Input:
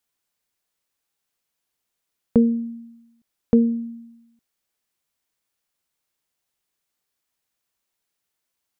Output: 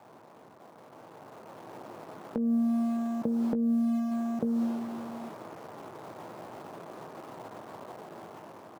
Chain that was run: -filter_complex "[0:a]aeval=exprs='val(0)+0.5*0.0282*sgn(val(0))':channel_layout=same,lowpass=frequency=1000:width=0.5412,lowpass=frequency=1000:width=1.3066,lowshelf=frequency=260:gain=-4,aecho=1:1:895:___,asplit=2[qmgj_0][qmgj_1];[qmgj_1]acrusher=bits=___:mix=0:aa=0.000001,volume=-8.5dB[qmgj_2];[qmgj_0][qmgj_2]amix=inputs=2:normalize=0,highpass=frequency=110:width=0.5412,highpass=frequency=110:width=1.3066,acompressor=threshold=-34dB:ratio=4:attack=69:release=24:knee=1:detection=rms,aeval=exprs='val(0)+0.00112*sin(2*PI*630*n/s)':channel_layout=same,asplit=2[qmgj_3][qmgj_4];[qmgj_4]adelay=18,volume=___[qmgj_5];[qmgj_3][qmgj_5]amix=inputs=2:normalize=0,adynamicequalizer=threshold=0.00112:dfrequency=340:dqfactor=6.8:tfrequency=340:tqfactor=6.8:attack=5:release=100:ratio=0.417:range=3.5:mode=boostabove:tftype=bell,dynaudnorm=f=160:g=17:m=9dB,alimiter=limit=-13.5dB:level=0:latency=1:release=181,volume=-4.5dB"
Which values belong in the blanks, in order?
0.299, 7, -14dB